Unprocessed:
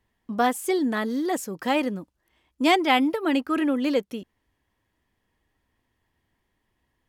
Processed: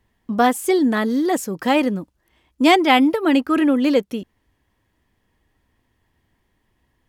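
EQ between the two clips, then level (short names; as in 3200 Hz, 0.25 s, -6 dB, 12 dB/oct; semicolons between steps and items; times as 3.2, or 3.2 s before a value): low shelf 330 Hz +3.5 dB; +5.0 dB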